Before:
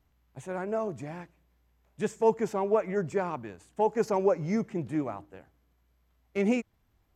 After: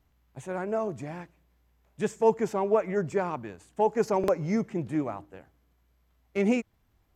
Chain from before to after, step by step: buffer glitch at 4.19 s, samples 2048, times 1; trim +1.5 dB

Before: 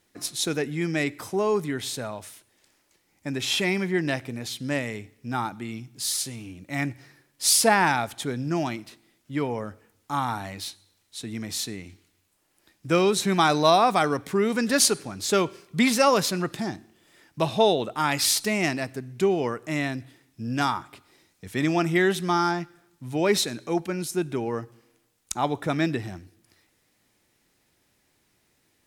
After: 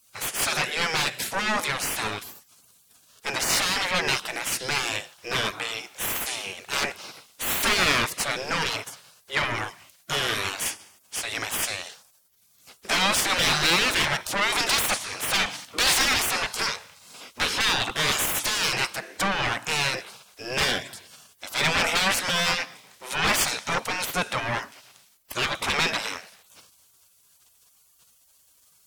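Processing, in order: overdrive pedal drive 28 dB, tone 4.6 kHz, clips at -6 dBFS; spectral gate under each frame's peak -15 dB weak

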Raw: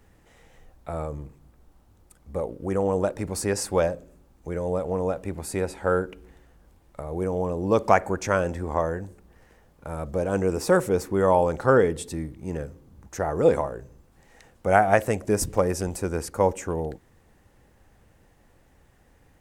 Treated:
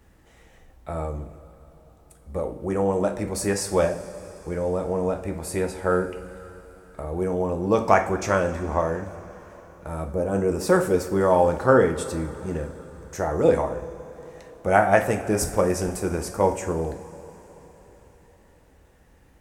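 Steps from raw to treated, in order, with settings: 10.12–10.64 s: peaking EQ 3.4 kHz -11 dB -> -2 dB 2.3 oct; two-slope reverb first 0.38 s, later 4.4 s, from -18 dB, DRR 3.5 dB

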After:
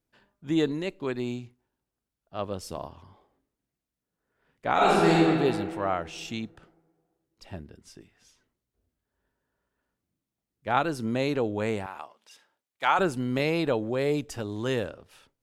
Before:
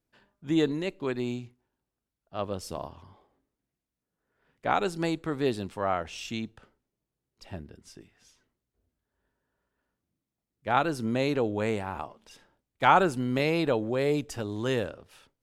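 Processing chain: 4.73–5.21 s: reverb throw, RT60 2.1 s, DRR -8.5 dB; 11.86–12.99 s: high-pass 1.1 kHz 6 dB/octave

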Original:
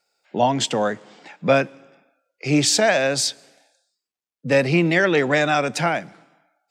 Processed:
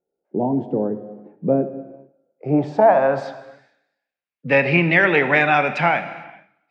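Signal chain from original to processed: low-pass sweep 370 Hz -> 2.4 kHz, 1.76–3.97 s; dynamic bell 860 Hz, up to +7 dB, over -35 dBFS, Q 2.8; gated-style reverb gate 480 ms falling, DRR 9.5 dB; trim -1.5 dB

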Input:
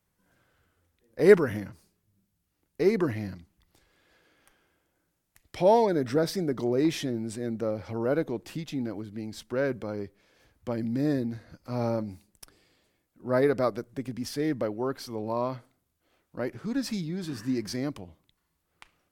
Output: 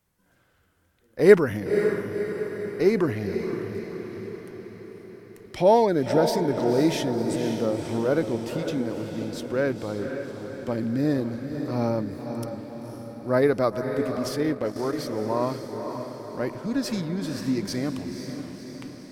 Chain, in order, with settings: echo that smears into a reverb 525 ms, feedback 58%, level -7 dB; 14.43–14.93 s: transient shaper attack -6 dB, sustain -10 dB; trim +3 dB

